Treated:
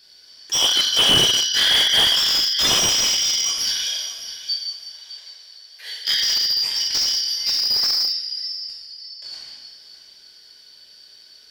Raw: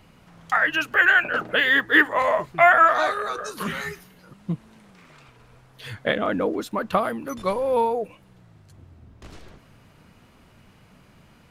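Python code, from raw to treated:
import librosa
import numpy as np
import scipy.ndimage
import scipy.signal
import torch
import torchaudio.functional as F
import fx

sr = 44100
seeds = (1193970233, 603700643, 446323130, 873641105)

y = fx.band_shuffle(x, sr, order='4321')
y = fx.steep_highpass(y, sr, hz=430.0, slope=96, at=(3.69, 6.16))
y = fx.echo_feedback(y, sr, ms=611, feedback_pct=28, wet_db=-13.0)
y = fx.rev_plate(y, sr, seeds[0], rt60_s=1.3, hf_ratio=0.9, predelay_ms=0, drr_db=-4.5)
y = fx.slew_limit(y, sr, full_power_hz=680.0)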